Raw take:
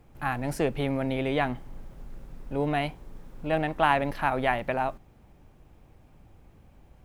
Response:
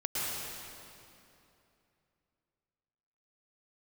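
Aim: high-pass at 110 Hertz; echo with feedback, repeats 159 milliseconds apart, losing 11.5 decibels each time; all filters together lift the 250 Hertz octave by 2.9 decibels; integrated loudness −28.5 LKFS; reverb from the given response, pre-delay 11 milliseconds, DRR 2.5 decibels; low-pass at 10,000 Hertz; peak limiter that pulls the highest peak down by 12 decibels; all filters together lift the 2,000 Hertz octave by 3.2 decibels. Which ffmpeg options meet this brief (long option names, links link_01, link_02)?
-filter_complex "[0:a]highpass=110,lowpass=10000,equalizer=frequency=250:width_type=o:gain=3.5,equalizer=frequency=2000:width_type=o:gain=4,alimiter=limit=-18dB:level=0:latency=1,aecho=1:1:159|318|477:0.266|0.0718|0.0194,asplit=2[link_01][link_02];[1:a]atrim=start_sample=2205,adelay=11[link_03];[link_02][link_03]afir=irnorm=-1:irlink=0,volume=-9.5dB[link_04];[link_01][link_04]amix=inputs=2:normalize=0"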